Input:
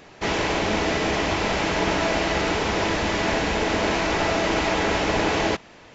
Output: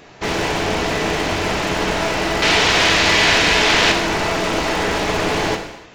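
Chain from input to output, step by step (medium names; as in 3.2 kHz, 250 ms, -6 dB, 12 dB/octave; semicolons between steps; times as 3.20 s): one-sided wavefolder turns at -21 dBFS; 2.42–3.92 s: peaking EQ 3.5 kHz +11.5 dB 2.8 oct; gated-style reverb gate 330 ms falling, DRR 4.5 dB; trim +3 dB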